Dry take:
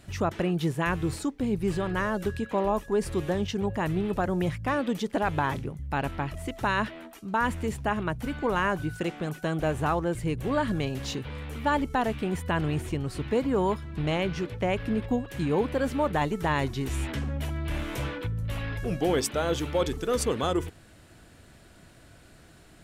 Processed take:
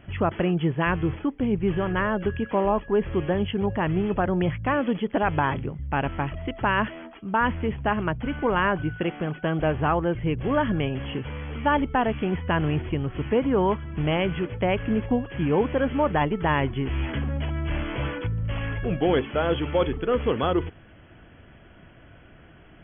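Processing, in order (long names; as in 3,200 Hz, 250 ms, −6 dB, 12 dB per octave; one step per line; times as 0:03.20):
linear-phase brick-wall low-pass 3,400 Hz
level +3.5 dB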